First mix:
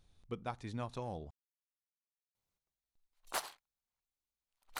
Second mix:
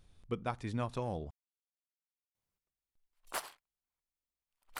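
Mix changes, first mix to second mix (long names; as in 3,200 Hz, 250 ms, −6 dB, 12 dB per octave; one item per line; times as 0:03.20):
speech +5.0 dB
master: add thirty-one-band graphic EQ 800 Hz −3 dB, 4,000 Hz −5 dB, 6,300 Hz −4 dB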